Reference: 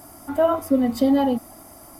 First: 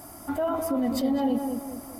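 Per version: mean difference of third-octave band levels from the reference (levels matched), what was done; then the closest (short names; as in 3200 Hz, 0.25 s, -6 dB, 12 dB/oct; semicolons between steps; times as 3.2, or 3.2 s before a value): 5.5 dB: limiter -20 dBFS, peak gain reduction 11.5 dB; on a send: darkening echo 0.207 s, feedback 46%, low-pass 1400 Hz, level -4.5 dB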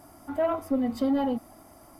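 2.0 dB: high shelf 5900 Hz -8.5 dB; soft clip -11.5 dBFS, distortion -20 dB; gain -5.5 dB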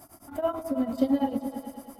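4.0 dB: tremolo triangle 9 Hz, depth 95%; on a send: repeats that get brighter 0.106 s, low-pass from 200 Hz, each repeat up 2 oct, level -6 dB; on the sum: gain -3.5 dB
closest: second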